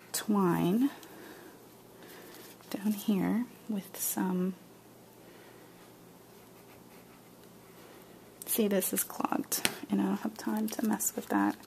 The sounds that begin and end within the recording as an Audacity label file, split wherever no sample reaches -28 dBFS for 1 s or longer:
2.720000	4.500000	sound